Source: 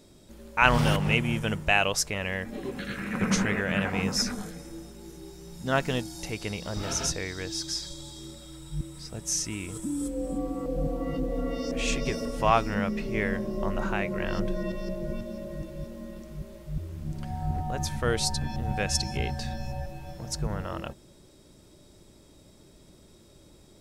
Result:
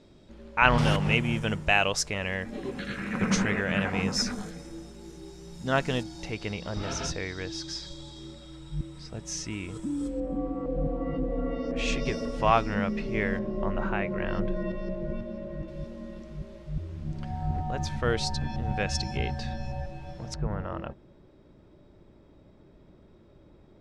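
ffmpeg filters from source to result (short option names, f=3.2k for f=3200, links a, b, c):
-af "asetnsamples=n=441:p=0,asendcmd='0.78 lowpass f 7700;6.03 lowpass f 4500;10.2 lowpass f 2100;11.76 lowpass f 5200;13.39 lowpass f 2700;15.68 lowpass f 4800;20.34 lowpass f 1900',lowpass=3.8k"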